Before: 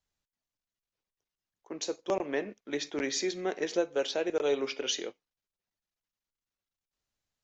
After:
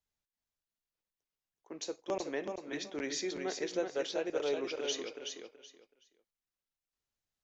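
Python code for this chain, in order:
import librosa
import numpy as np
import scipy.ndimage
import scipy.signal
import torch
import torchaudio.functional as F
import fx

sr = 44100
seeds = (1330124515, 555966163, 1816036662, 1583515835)

y = fx.echo_feedback(x, sr, ms=376, feedback_pct=22, wet_db=-5.5)
y = y * librosa.db_to_amplitude(-5.5)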